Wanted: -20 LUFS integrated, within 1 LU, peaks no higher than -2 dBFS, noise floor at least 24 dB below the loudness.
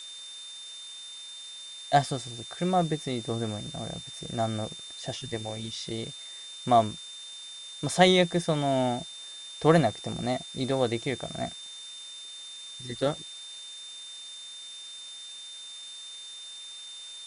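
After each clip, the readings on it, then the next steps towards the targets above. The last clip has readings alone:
steady tone 3600 Hz; tone level -41 dBFS; noise floor -43 dBFS; noise floor target -55 dBFS; loudness -30.5 LUFS; peak -7.0 dBFS; loudness target -20.0 LUFS
-> notch 3600 Hz, Q 30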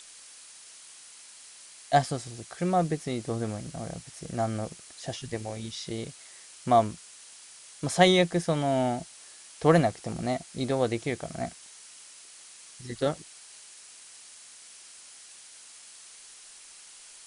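steady tone none; noise floor -50 dBFS; noise floor target -53 dBFS
-> noise print and reduce 6 dB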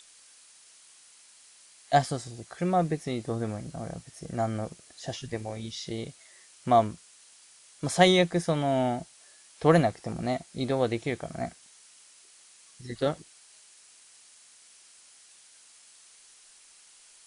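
noise floor -56 dBFS; loudness -28.5 LUFS; peak -7.5 dBFS; loudness target -20.0 LUFS
-> gain +8.5 dB; limiter -2 dBFS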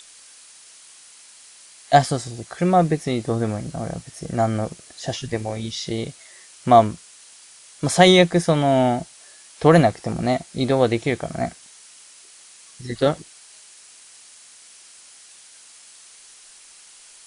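loudness -20.5 LUFS; peak -2.0 dBFS; noise floor -48 dBFS

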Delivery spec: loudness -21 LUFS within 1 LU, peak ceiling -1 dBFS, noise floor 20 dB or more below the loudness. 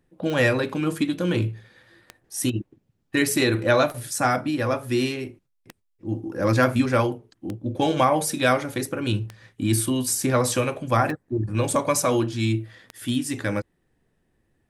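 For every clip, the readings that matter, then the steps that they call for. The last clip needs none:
clicks 8; loudness -23.5 LUFS; peak -6.5 dBFS; loudness target -21.0 LUFS
-> de-click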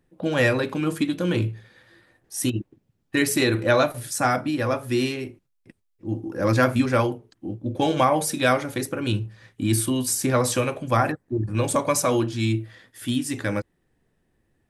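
clicks 0; loudness -23.5 LUFS; peak -6.5 dBFS; loudness target -21.0 LUFS
-> gain +2.5 dB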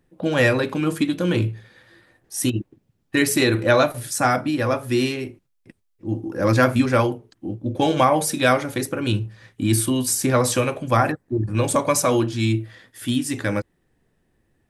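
loudness -21.0 LUFS; peak -4.0 dBFS; noise floor -69 dBFS

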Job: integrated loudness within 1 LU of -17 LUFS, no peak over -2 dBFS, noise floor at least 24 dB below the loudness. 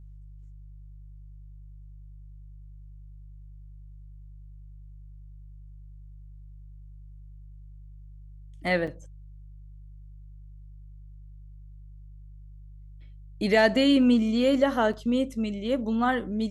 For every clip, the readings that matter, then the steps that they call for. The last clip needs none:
dropouts 2; longest dropout 5.3 ms; hum 50 Hz; harmonics up to 150 Hz; hum level -43 dBFS; loudness -24.5 LUFS; peak -8.0 dBFS; loudness target -17.0 LUFS
-> interpolate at 8.87/14.93, 5.3 ms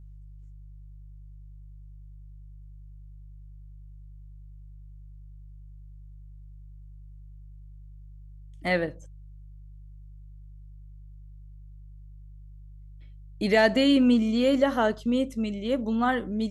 dropouts 0; hum 50 Hz; harmonics up to 150 Hz; hum level -43 dBFS
-> de-hum 50 Hz, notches 3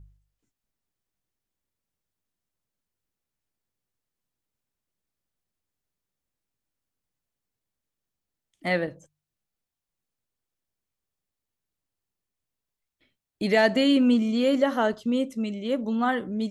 hum none; loudness -24.0 LUFS; peak -8.0 dBFS; loudness target -17.0 LUFS
-> gain +7 dB; limiter -2 dBFS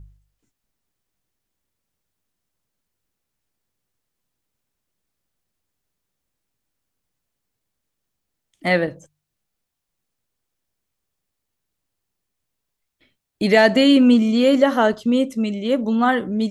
loudness -17.5 LUFS; peak -2.0 dBFS; noise floor -80 dBFS

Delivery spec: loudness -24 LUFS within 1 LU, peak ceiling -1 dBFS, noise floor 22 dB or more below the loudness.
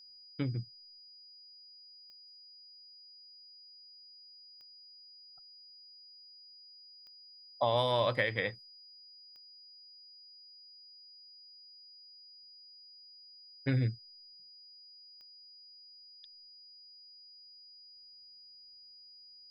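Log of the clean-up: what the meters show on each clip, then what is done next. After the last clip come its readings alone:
clicks 5; steady tone 4900 Hz; tone level -53 dBFS; loudness -33.5 LUFS; peak -16.0 dBFS; loudness target -24.0 LUFS
-> de-click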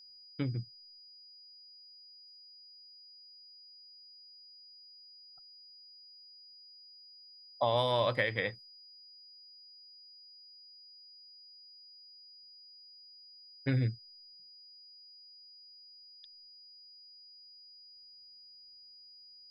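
clicks 0; steady tone 4900 Hz; tone level -53 dBFS
-> notch 4900 Hz, Q 30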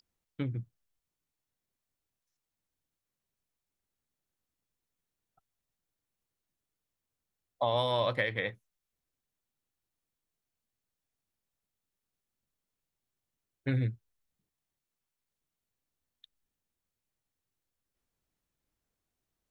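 steady tone none; loudness -32.5 LUFS; peak -16.0 dBFS; loudness target -24.0 LUFS
-> gain +8.5 dB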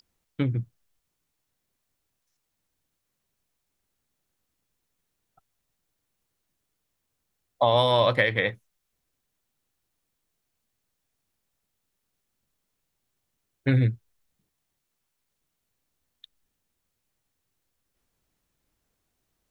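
loudness -24.0 LUFS; peak -7.5 dBFS; noise floor -80 dBFS

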